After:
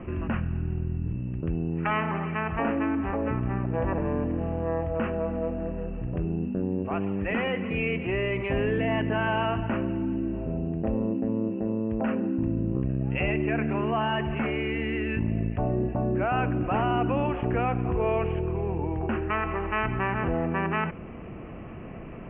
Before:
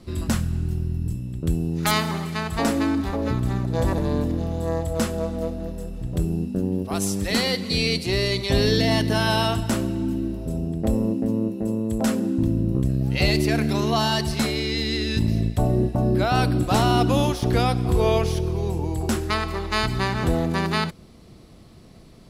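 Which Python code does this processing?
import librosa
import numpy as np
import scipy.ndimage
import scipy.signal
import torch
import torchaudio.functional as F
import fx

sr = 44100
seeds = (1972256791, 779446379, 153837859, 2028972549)

y = scipy.signal.sosfilt(scipy.signal.butter(16, 2800.0, 'lowpass', fs=sr, output='sos'), x)
y = fx.low_shelf(y, sr, hz=250.0, db=-6.0)
y = fx.notch(y, sr, hz=2100.0, q=17.0)
y = fx.env_flatten(y, sr, amount_pct=50)
y = F.gain(torch.from_numpy(y), -4.5).numpy()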